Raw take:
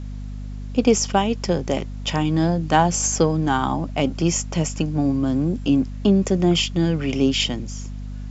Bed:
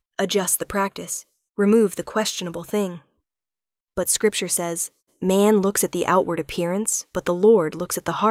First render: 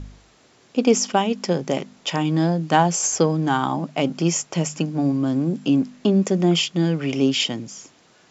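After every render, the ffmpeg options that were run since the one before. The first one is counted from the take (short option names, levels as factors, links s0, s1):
-af "bandreject=f=50:t=h:w=4,bandreject=f=100:t=h:w=4,bandreject=f=150:t=h:w=4,bandreject=f=200:t=h:w=4,bandreject=f=250:t=h:w=4"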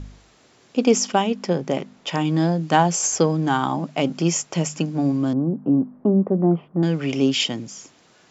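-filter_complex "[0:a]asettb=1/sr,asplit=3[s0][s1][s2];[s0]atrim=end=1.304[s3];[s1]atrim=start=1.3:end=2.13,asetpts=PTS-STARTPTS,afade=t=in:d=0.004:c=qsin,afade=t=out:st=0.826:d=0.004:c=qsin,highshelf=f=4300:g=-8.5[s4];[s2]atrim=start=2.126[s5];[s3][s4]acrossfade=d=0.004:c1=hsin:c2=qsin[s6];[s6][s5]acrossfade=d=0.004:c1=qsin:c2=hsin,asettb=1/sr,asplit=3[s7][s8][s9];[s7]atrim=end=5.334[s10];[s8]atrim=start=5.33:end=6.83,asetpts=PTS-STARTPTS,afade=t=in:d=0.004:c=qsin,afade=t=out:st=1.496:d=0.004:c=qsin,lowpass=f=1100:w=0.5412,lowpass=f=1100:w=1.3066[s11];[s9]atrim=start=6.826[s12];[s10][s11]acrossfade=d=0.004:c1=hsin:c2=qsin[s13];[s13][s12]acrossfade=d=0.004:c1=qsin:c2=hsin"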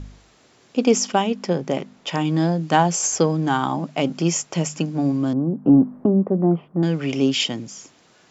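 -filter_complex "[0:a]asettb=1/sr,asplit=3[s0][s1][s2];[s0]atrim=end=5.654[s3];[s1]atrim=start=5.65:end=6.06,asetpts=PTS-STARTPTS,afade=t=in:d=0.004:c=qsin,afade=t=out:st=0.406:d=0.004:c=qsin,acontrast=47[s4];[s2]atrim=start=6.056[s5];[s3][s4]acrossfade=d=0.004:c1=hsin:c2=qsin[s6];[s6][s5]acrossfade=d=0.004:c1=qsin:c2=hsin"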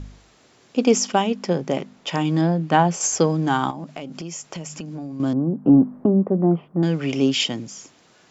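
-filter_complex "[0:a]asettb=1/sr,asplit=3[s0][s1][s2];[s0]atrim=end=2.414[s3];[s1]atrim=start=2.41:end=3.01,asetpts=PTS-STARTPTS,afade=t=in:d=0.004:c=qsin,afade=t=out:st=0.596:d=0.004:c=qsin,bass=f=250:g=1,treble=f=4000:g=-10[s4];[s2]atrim=start=3.006[s5];[s3][s4]acrossfade=d=0.004:c1=hsin:c2=qsin[s6];[s6][s5]acrossfade=d=0.004:c1=qsin:c2=hsin,asettb=1/sr,asplit=3[s7][s8][s9];[s7]atrim=end=3.704[s10];[s8]atrim=start=3.7:end=5.2,asetpts=PTS-STARTPTS,afade=t=in:d=0.004:c=qsin,afade=t=out:st=1.496:d=0.004:c=qsin,acompressor=threshold=0.0355:ratio=8:attack=3.2:release=140:knee=1:detection=peak[s11];[s9]atrim=start=5.196[s12];[s10][s11]acrossfade=d=0.004:c1=hsin:c2=qsin[s13];[s13][s12]acrossfade=d=0.004:c1=qsin:c2=hsin"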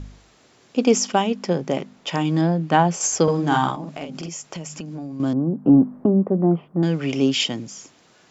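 -filter_complex "[0:a]asettb=1/sr,asplit=3[s0][s1][s2];[s0]atrim=end=3.234[s3];[s1]atrim=start=3.23:end=4.29,asetpts=PTS-STARTPTS,afade=t=in:d=0.004:c=qsin,afade=t=out:st=1.056:d=0.004:c=qsin,asplit=2[s4][s5];[s5]adelay=47,volume=0.708[s6];[s4][s6]amix=inputs=2:normalize=0,atrim=end_sample=46746[s7];[s2]atrim=start=4.286[s8];[s3][s7]acrossfade=d=0.004:c1=hsin:c2=qsin[s9];[s9][s8]acrossfade=d=0.004:c1=qsin:c2=hsin"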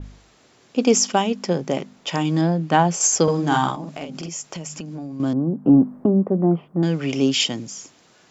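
-af "adynamicequalizer=threshold=0.0141:dfrequency=4300:dqfactor=0.7:tfrequency=4300:tqfactor=0.7:attack=5:release=100:ratio=0.375:range=2.5:mode=boostabove:tftype=highshelf"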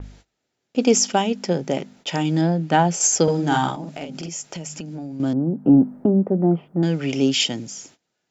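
-af "bandreject=f=1100:w=5.4,agate=range=0.0794:threshold=0.00398:ratio=16:detection=peak"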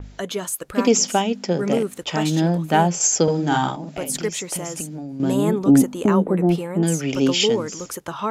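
-filter_complex "[1:a]volume=0.501[s0];[0:a][s0]amix=inputs=2:normalize=0"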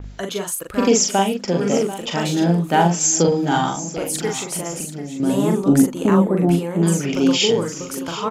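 -filter_complex "[0:a]asplit=2[s0][s1];[s1]adelay=41,volume=0.631[s2];[s0][s2]amix=inputs=2:normalize=0,aecho=1:1:739:0.2"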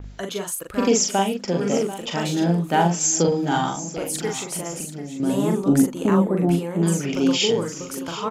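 -af "volume=0.708"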